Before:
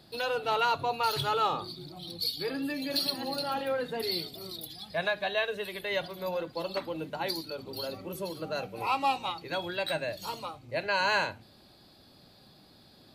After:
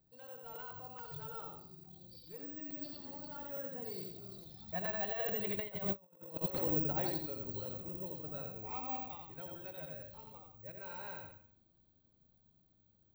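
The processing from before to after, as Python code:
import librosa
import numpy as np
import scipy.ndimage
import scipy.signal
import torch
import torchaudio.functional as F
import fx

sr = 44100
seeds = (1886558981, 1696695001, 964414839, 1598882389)

p1 = fx.doppler_pass(x, sr, speed_mps=15, closest_m=1.4, pass_at_s=6.07)
p2 = p1 + fx.echo_feedback(p1, sr, ms=86, feedback_pct=36, wet_db=-4, dry=0)
p3 = fx.over_compress(p2, sr, threshold_db=-49.0, ratio=-0.5)
p4 = fx.riaa(p3, sr, side='playback')
p5 = (np.kron(p4[::2], np.eye(2)[0]) * 2)[:len(p4)]
p6 = fx.buffer_crackle(p5, sr, first_s=0.55, period_s=0.43, block=256, kind='repeat')
y = F.gain(torch.from_numpy(p6), 5.5).numpy()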